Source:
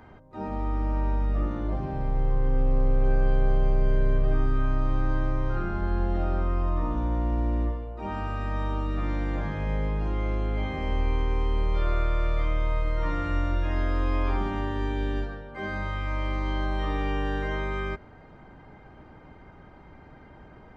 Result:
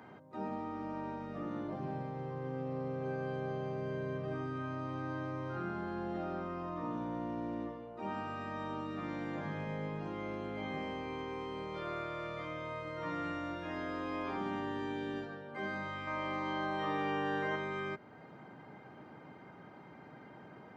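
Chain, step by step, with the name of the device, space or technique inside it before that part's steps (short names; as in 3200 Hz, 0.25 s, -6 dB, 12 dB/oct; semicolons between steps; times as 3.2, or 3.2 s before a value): parallel compression (in parallel at -1 dB: compressor, threshold -41 dBFS, peak gain reduction 21 dB); 16.07–17.56 on the sum: bell 990 Hz +5 dB 2.3 oct; HPF 130 Hz 24 dB/oct; gain -7.5 dB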